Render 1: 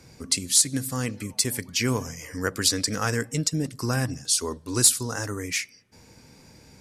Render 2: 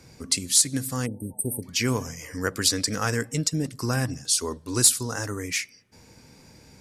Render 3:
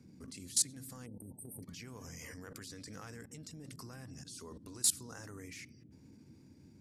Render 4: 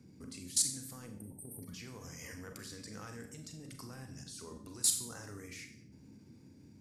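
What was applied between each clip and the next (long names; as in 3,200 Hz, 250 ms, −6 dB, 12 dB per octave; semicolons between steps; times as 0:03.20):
time-frequency box erased 0:01.06–0:01.63, 920–8,200 Hz
transient designer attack −8 dB, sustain 0 dB; output level in coarse steps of 22 dB; noise in a band 79–300 Hz −53 dBFS; level −5 dB
convolution reverb RT60 0.55 s, pre-delay 30 ms, DRR 5.5 dB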